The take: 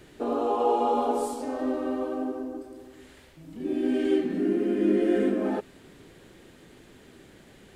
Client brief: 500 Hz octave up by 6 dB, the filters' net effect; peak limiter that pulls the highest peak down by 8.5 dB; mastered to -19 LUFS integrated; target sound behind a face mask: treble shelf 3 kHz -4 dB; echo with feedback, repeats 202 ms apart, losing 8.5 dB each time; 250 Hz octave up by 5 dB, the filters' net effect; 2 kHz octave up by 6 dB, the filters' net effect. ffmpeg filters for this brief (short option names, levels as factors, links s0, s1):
-af "equalizer=f=250:t=o:g=4,equalizer=f=500:t=o:g=6,equalizer=f=2000:t=o:g=8.5,alimiter=limit=0.178:level=0:latency=1,highshelf=f=3000:g=-4,aecho=1:1:202|404|606|808:0.376|0.143|0.0543|0.0206,volume=1.78"